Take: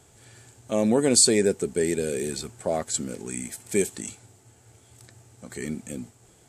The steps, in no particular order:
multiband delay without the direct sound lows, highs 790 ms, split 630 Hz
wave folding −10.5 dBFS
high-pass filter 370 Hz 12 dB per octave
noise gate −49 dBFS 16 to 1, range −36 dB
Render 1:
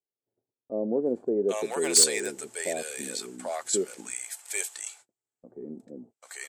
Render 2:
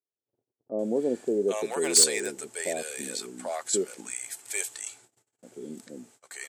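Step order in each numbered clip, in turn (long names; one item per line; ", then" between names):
wave folding, then high-pass filter, then noise gate, then multiband delay without the direct sound
wave folding, then multiband delay without the direct sound, then noise gate, then high-pass filter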